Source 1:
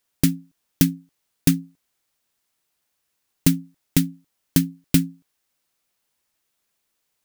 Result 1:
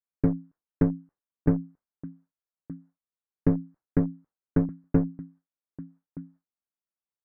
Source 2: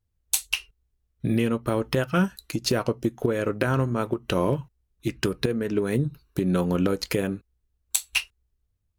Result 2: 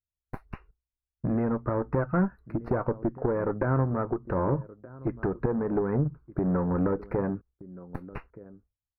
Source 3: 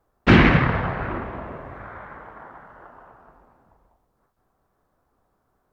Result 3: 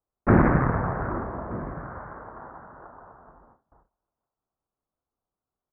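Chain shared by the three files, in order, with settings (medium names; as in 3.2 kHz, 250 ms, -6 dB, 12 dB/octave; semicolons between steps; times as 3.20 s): echo from a far wall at 210 m, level -21 dB; one-sided clip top -24.5 dBFS; gate with hold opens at -46 dBFS; inverse Chebyshev low-pass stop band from 3 kHz, stop band 40 dB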